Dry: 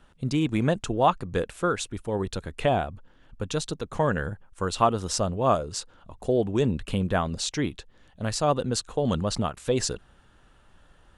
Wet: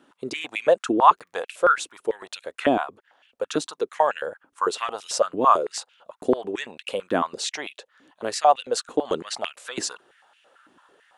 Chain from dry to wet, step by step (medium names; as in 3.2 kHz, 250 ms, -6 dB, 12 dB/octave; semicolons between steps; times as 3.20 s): 1.02–1.99 s: crackle 22 per s -51 dBFS; step-sequenced high-pass 9 Hz 290–2600 Hz